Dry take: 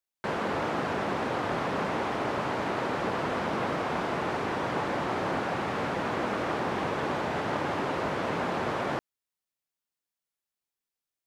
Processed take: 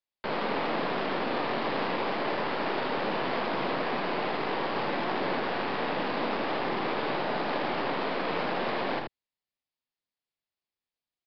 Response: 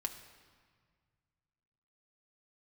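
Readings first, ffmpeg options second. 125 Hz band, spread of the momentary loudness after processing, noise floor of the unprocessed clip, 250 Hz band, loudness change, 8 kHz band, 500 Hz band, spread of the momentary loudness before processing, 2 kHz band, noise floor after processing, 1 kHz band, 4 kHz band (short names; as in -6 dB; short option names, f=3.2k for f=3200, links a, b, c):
-5.5 dB, 1 LU, under -85 dBFS, -1.0 dB, 0.0 dB, under -15 dB, 0.0 dB, 1 LU, +0.5 dB, under -85 dBFS, 0.0 dB, +4.0 dB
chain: -filter_complex "[0:a]equalizer=f=1.4k:t=o:w=0.35:g=-5.5,aeval=exprs='0.133*(cos(1*acos(clip(val(0)/0.133,-1,1)))-cos(1*PI/2))+0.0211*(cos(8*acos(clip(val(0)/0.133,-1,1)))-cos(8*PI/2))':c=same,aecho=1:1:57|79:0.355|0.501,acrossover=split=150|460|4200[a][b][c][d];[a]asoftclip=type=tanh:threshold=-38.5dB[e];[e][b][c][d]amix=inputs=4:normalize=0,aresample=11025,aresample=44100,volume=-1.5dB"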